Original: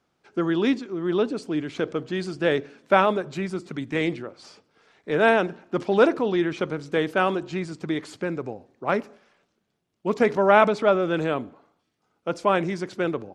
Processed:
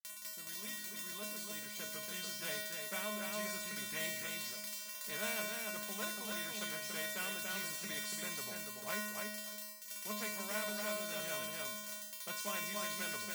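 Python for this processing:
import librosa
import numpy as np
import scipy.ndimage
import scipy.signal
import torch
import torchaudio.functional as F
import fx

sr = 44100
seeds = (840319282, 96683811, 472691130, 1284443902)

p1 = fx.fade_in_head(x, sr, length_s=3.91)
p2 = p1 + 10.0 ** (-6.5 / 20.0) * np.pad(p1, (int(286 * sr / 1000.0), 0))[:len(p1)]
p3 = fx.quant_companded(p2, sr, bits=4)
p4 = p2 + (p3 * 10.0 ** (-10.5 / 20.0))
p5 = fx.rider(p4, sr, range_db=4, speed_s=0.5)
p6 = fx.dmg_crackle(p5, sr, seeds[0], per_s=39.0, level_db=-21.0)
p7 = fx.high_shelf(p6, sr, hz=4500.0, db=11.5)
p8 = p7 + fx.echo_single(p7, sr, ms=291, db=-21.5, dry=0)
p9 = fx.vibrato(p8, sr, rate_hz=4.0, depth_cents=39.0)
p10 = fx.peak_eq(p9, sr, hz=290.0, db=-13.0, octaves=2.0)
p11 = fx.comb_fb(p10, sr, f0_hz=210.0, decay_s=0.66, harmonics='odd', damping=0.0, mix_pct=100)
p12 = fx.small_body(p11, sr, hz=(420.0, 2000.0), ring_ms=45, db=11)
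p13 = fx.spectral_comp(p12, sr, ratio=2.0)
y = p13 * 10.0 ** (5.0 / 20.0)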